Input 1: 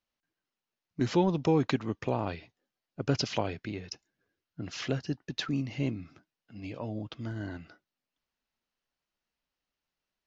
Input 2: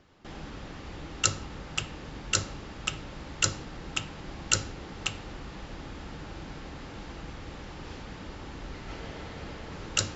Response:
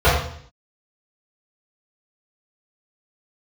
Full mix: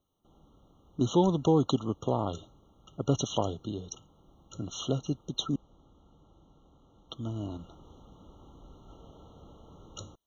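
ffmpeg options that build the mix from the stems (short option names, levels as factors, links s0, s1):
-filter_complex "[0:a]volume=1.19,asplit=3[s0][s1][s2];[s0]atrim=end=5.56,asetpts=PTS-STARTPTS,afade=t=out:st=5.556:d=0.004:c=hsin[s3];[s1]atrim=start=5.56:end=7.09,asetpts=PTS-STARTPTS,volume=0[s4];[s2]atrim=start=7.09,asetpts=PTS-STARTPTS,afade=t=in:d=0.004:c=hsin[s5];[s3][s4][s5]concat=n=3:v=0:a=1[s6];[1:a]highshelf=f=2300:g=-10,volume=0.282,afade=t=in:st=7.19:d=0.38:silence=0.421697[s7];[s6][s7]amix=inputs=2:normalize=0,highshelf=f=5900:g=7.5,afftfilt=real='re*eq(mod(floor(b*sr/1024/1400),2),0)':imag='im*eq(mod(floor(b*sr/1024/1400),2),0)':win_size=1024:overlap=0.75"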